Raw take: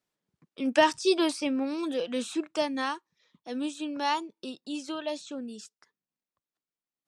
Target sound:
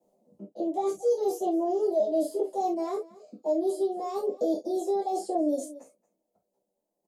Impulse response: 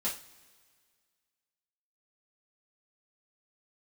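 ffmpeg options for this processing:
-filter_complex "[0:a]areverse,acompressor=threshold=-39dB:ratio=16,areverse,asetrate=55563,aresample=44100,atempo=0.793701,firequalizer=gain_entry='entry(130,0);entry(590,14);entry(1400,-23);entry(7100,-7)':delay=0.05:min_phase=1,aecho=1:1:229:0.0891[a];[1:a]atrim=start_sample=2205,atrim=end_sample=3528[b];[a][b]afir=irnorm=-1:irlink=0,acrossover=split=180|3000[c][d][e];[d]acompressor=threshold=-34dB:ratio=2.5[f];[c][f][e]amix=inputs=3:normalize=0,volume=8.5dB"

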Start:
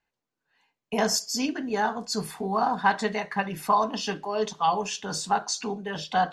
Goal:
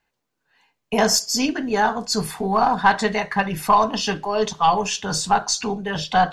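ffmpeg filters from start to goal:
-af "acontrast=86,aeval=exprs='0.631*(cos(1*acos(clip(val(0)/0.631,-1,1)))-cos(1*PI/2))+0.00794*(cos(4*acos(clip(val(0)/0.631,-1,1)))-cos(4*PI/2))+0.00447*(cos(5*acos(clip(val(0)/0.631,-1,1)))-cos(5*PI/2))':c=same,asubboost=boost=4:cutoff=120"

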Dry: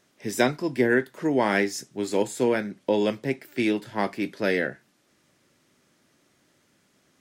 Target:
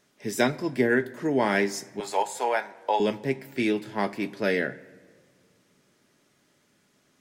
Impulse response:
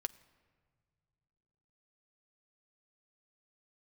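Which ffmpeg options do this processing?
-filter_complex "[0:a]asettb=1/sr,asplit=3[a][b][c];[a]atrim=end=2.004[d];[b]atrim=start=2:end=3,asetpts=PTS-STARTPTS,afade=t=in:d=0.004:c=qsin,afade=t=out:st=0.996:d=0.004:c=qsin,highpass=f=800:t=q:w=3.9[e];[c]atrim=start=2.996[f];[d][e]acrossfade=d=0.004:c1=hsin:c2=qsin[g];[g][f]acrossfade=d=0.004:c1=qsin:c2=hsin[h];[1:a]atrim=start_sample=2205[i];[h][i]afir=irnorm=-1:irlink=0"

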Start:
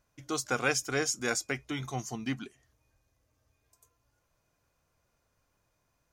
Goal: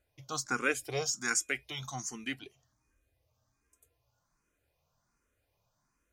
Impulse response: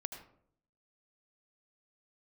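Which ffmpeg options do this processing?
-filter_complex "[0:a]asettb=1/sr,asplit=3[a][b][c];[a]atrim=end=1.134[d];[b]atrim=start=1.13:end=2.41,asetpts=PTS-STARTPTS,afade=t=in:d=0.004:c=qsin,afade=t=out:st=1.276:d=0.004:c=qsin,tiltshelf=f=1.1k:g=-5[e];[c]atrim=start=2.406[f];[d][e]acrossfade=d=0.004:c1=hsin:c2=qsin[g];[g][f]acrossfade=d=0.004:c1=qsin:c2=hsin,asplit=2[h][i];[i]afreqshift=1.3[j];[h][j]amix=inputs=2:normalize=1"

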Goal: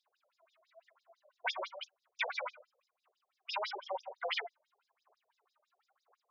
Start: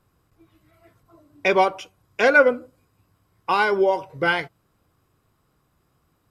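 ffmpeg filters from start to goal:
-filter_complex "[0:a]lowshelf=f=480:t=q:w=1.5:g=-7.5,aphaser=in_gain=1:out_gain=1:delay=3.3:decay=0.73:speed=0.98:type=sinusoidal,asettb=1/sr,asplit=3[a][b][c];[a]atrim=end=1.484[d];[b]atrim=start=1.48:end=3.95,asetpts=PTS-STARTPTS,afade=t=in:d=0.004:c=qsin,afade=t=out:st=2.466:d=0.004:c=qsin,equalizer=f=670:w=0.3:g=-5[e];[c]atrim=start=3.946[f];[d][e]acrossfade=d=0.004:c1=hsin:c2=qsin[g];[g][f]acrossfade=d=0.004:c1=qsin:c2=hsin,afftfilt=real='re*lt(hypot(re,im),0.398)':imag='im*lt(hypot(re,im),0.398)':win_size=1024:overlap=0.75,afftfilt=real='re*between(b*sr/1024,500*pow(5100/500,0.5+0.5*sin(2*PI*6*pts/sr))/1.41,500*pow(5100/500,0.5+0.5*sin(2*PI*6*pts/sr))*1.41)':imag='im*between(b*sr/1024,500*pow(5100/500,0.5+0.5*sin(2*PI*6*pts/sr))/1.41,500*pow(5100/500,0.5+0.5*sin(2*PI*6*pts/sr))*1.41)':win_size=1024:overlap=0.75,volume=-3dB"

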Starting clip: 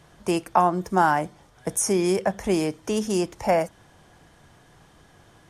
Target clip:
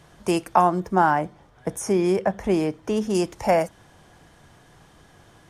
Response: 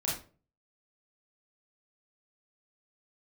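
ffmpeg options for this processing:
-filter_complex "[0:a]asettb=1/sr,asplit=3[a][b][c];[a]atrim=end=0.804[d];[b]atrim=start=0.8:end=3.15,asetpts=PTS-STARTPTS,afade=t=in:d=0.004:c=qsin,afade=t=out:st=2.346:d=0.004:c=qsin,equalizer=f=9.7k:w=0.34:g=-10.5[e];[c]atrim=start=3.146[f];[d][e]acrossfade=d=0.004:c1=hsin:c2=qsin[g];[g][f]acrossfade=d=0.004:c1=qsin:c2=hsin,volume=1.5dB"

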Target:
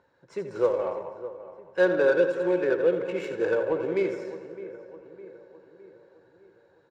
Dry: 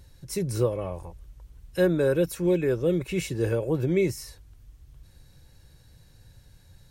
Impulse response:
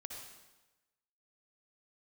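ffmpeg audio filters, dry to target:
-filter_complex "[0:a]highpass=400,equalizer=f=500:t=q:w=4:g=5,equalizer=f=940:t=q:w=4:g=7,equalizer=f=1.5k:t=q:w=4:g=9,equalizer=f=7.3k:t=q:w=4:g=7,lowpass=f=8.2k:w=0.5412,lowpass=f=8.2k:w=1.3066,asplit=2[a][b];[b]adelay=610,lowpass=f=3.5k:p=1,volume=-14dB,asplit=2[c][d];[d]adelay=610,lowpass=f=3.5k:p=1,volume=0.53,asplit=2[e][f];[f]adelay=610,lowpass=f=3.5k:p=1,volume=0.53,asplit=2[g][h];[h]adelay=610,lowpass=f=3.5k:p=1,volume=0.53,asplit=2[i][j];[j]adelay=610,lowpass=f=3.5k:p=1,volume=0.53[k];[a][c][e][g][i][k]amix=inputs=6:normalize=0,asplit=2[l][m];[1:a]atrim=start_sample=2205,adelay=83[n];[m][n]afir=irnorm=-1:irlink=0,volume=-2.5dB[o];[l][o]amix=inputs=2:normalize=0,adynamicsmooth=sensitivity=1.5:basefreq=1.6k"

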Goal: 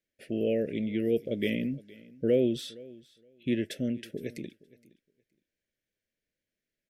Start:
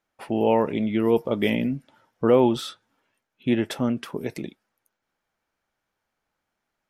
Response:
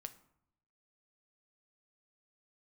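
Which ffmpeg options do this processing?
-af "asuperstop=centerf=1000:order=8:qfactor=0.94,aecho=1:1:467|934:0.0794|0.0135,volume=-6.5dB"

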